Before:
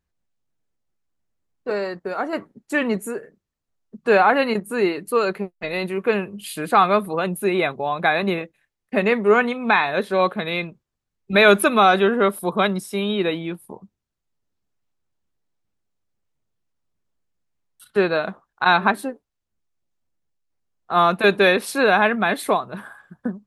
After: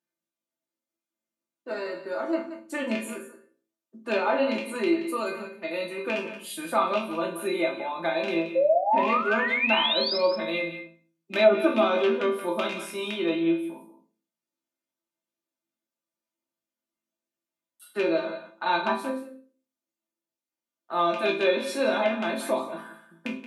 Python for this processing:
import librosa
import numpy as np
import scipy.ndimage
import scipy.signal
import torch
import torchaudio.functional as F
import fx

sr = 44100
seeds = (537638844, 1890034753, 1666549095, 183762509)

y = fx.rattle_buzz(x, sr, strikes_db=-23.0, level_db=-9.0)
y = scipy.signal.sosfilt(scipy.signal.butter(4, 180.0, 'highpass', fs=sr, output='sos'), y)
y = fx.high_shelf(y, sr, hz=11000.0, db=8.5)
y = fx.resonator_bank(y, sr, root=45, chord='minor', decay_s=0.37)
y = fx.spec_paint(y, sr, seeds[0], shape='rise', start_s=8.55, length_s=1.63, low_hz=510.0, high_hz=5300.0, level_db=-31.0)
y = y + 0.65 * np.pad(y, (int(3.3 * sr / 1000.0), 0))[:len(y)]
y = y + 10.0 ** (-13.0 / 20.0) * np.pad(y, (int(177 * sr / 1000.0), 0))[:len(y)]
y = fx.dynamic_eq(y, sr, hz=1600.0, q=1.2, threshold_db=-43.0, ratio=4.0, max_db=-7)
y = fx.env_lowpass_down(y, sr, base_hz=510.0, full_db=-19.0)
y = fx.room_shoebox(y, sr, seeds[1], volume_m3=210.0, walls='furnished', distance_m=0.83)
y = y * 10.0 ** (7.0 / 20.0)